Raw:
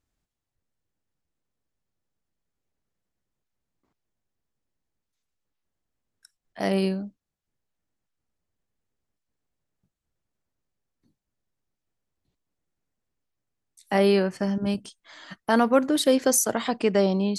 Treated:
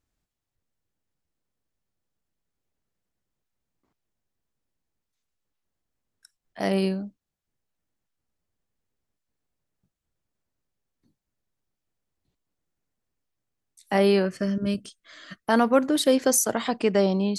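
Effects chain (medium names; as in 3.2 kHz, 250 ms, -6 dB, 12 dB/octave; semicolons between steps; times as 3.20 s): 14.25–15.47 s: Butterworth band-stop 860 Hz, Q 2.2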